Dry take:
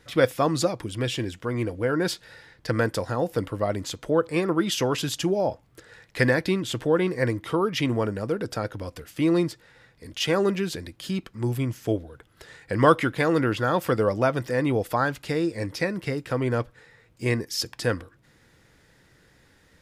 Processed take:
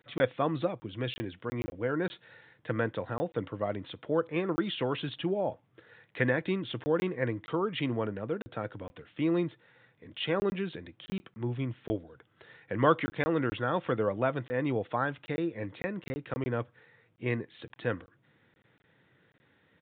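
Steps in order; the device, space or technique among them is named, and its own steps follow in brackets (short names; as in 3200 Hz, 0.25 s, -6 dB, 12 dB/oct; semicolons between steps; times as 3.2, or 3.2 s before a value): call with lost packets (HPF 100 Hz 24 dB/oct; downsampling 8000 Hz; packet loss packets of 20 ms random); gain -6.5 dB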